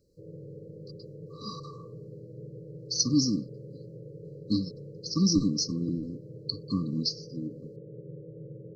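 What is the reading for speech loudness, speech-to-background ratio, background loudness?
-29.5 LUFS, 16.0 dB, -45.5 LUFS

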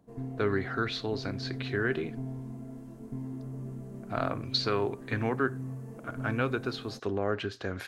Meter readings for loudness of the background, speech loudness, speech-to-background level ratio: -41.0 LUFS, -32.5 LUFS, 8.5 dB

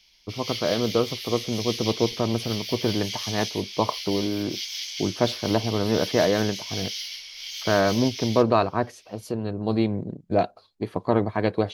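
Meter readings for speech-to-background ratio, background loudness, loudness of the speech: 6.0 dB, -32.0 LUFS, -26.0 LUFS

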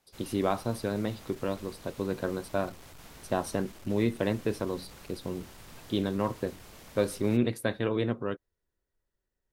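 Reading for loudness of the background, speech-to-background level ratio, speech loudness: -50.0 LUFS, 18.0 dB, -32.0 LUFS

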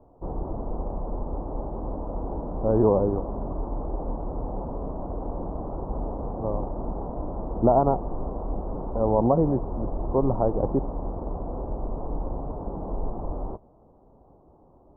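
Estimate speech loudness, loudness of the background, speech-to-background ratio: -24.5 LUFS, -33.5 LUFS, 9.0 dB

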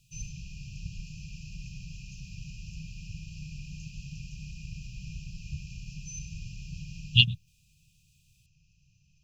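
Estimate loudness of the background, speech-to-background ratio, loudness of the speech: -43.0 LUFS, 20.0 dB, -23.0 LUFS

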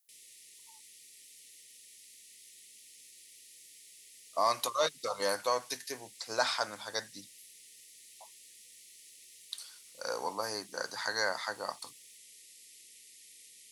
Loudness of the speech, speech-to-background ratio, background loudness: -34.5 LUFS, 18.0 dB, -52.5 LUFS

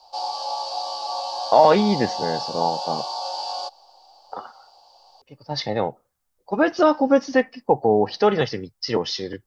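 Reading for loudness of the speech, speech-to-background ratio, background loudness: -21.5 LUFS, 7.0 dB, -28.5 LUFS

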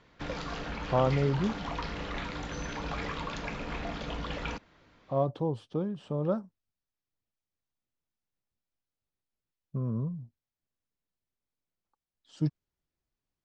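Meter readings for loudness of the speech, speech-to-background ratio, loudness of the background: -32.0 LUFS, 5.0 dB, -37.0 LUFS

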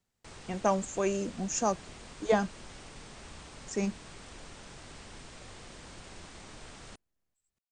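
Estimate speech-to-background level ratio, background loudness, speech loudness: 16.5 dB, -48.5 LUFS, -32.0 LUFS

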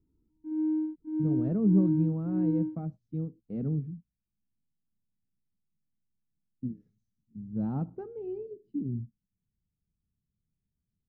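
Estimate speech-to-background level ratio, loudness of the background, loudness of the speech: -0.5 dB, -31.5 LUFS, -32.0 LUFS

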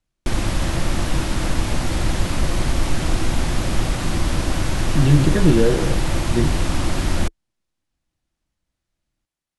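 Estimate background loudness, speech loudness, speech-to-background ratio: -23.5 LUFS, -19.5 LUFS, 4.0 dB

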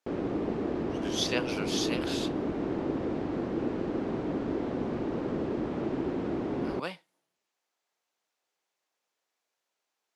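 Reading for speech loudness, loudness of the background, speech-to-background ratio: -34.5 LUFS, -32.5 LUFS, -2.0 dB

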